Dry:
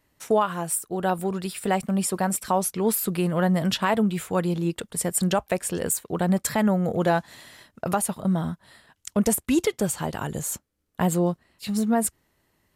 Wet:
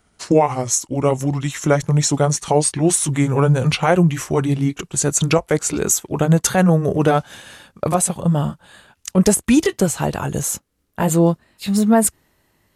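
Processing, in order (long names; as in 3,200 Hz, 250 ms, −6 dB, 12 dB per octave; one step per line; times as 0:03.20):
pitch glide at a constant tempo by −5.5 semitones ending unshifted
level +8.5 dB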